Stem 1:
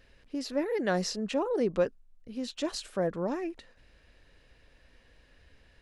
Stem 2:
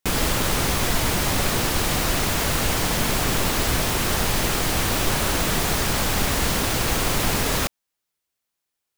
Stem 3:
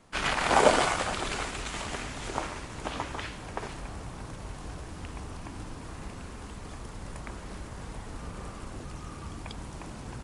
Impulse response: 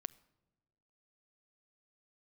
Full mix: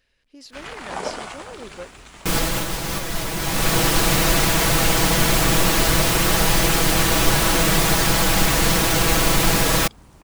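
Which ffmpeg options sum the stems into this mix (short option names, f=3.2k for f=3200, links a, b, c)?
-filter_complex "[0:a]tiltshelf=f=1.4k:g=-5,volume=-7dB,asplit=2[a][b];[1:a]aecho=1:1:6.1:0.65,adelay=2200,volume=3dB[c];[2:a]acrusher=bits=8:mix=0:aa=0.000001,adelay=400,volume=-8dB[d];[b]apad=whole_len=492979[e];[c][e]sidechaincompress=threshold=-45dB:ratio=12:attack=21:release=620[f];[a][f][d]amix=inputs=3:normalize=0"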